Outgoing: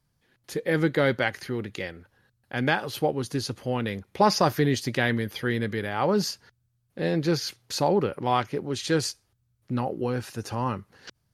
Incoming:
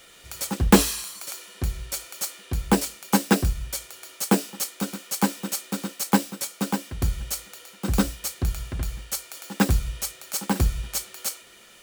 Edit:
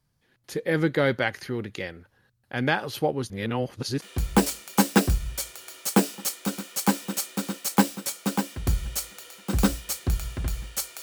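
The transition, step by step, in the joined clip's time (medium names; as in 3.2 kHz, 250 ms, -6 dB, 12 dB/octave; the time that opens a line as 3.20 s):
outgoing
3.30–4.02 s: reverse
4.02 s: go over to incoming from 2.37 s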